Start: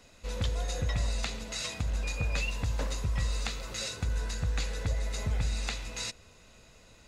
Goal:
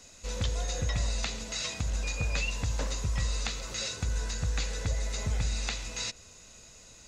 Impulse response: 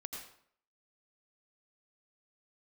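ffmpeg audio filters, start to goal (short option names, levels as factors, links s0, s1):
-filter_complex "[0:a]acrossover=split=4600[s0][s1];[s1]acompressor=threshold=0.002:ratio=4:attack=1:release=60[s2];[s0][s2]amix=inputs=2:normalize=0,equalizer=f=6600:t=o:w=1:g=12.5"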